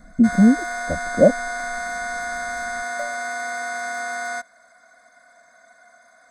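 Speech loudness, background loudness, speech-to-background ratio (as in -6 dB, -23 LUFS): -17.5 LUFS, -27.5 LUFS, 10.0 dB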